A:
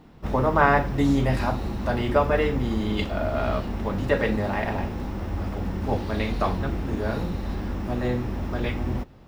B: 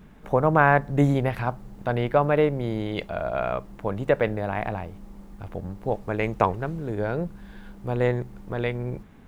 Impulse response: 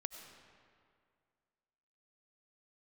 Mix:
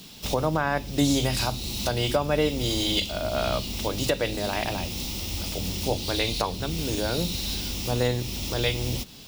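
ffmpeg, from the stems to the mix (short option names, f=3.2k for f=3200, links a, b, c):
-filter_complex "[0:a]acrossover=split=390[a][b];[b]acompressor=threshold=-44dB:ratio=2[c];[a][c]amix=inputs=2:normalize=0,aexciter=amount=10.1:drive=9.9:freq=2.6k,volume=-4.5dB[d];[1:a]highpass=f=110:w=0.5412,highpass=f=110:w=1.3066,volume=-1dB[e];[d][e]amix=inputs=2:normalize=0,alimiter=limit=-11.5dB:level=0:latency=1:release=376"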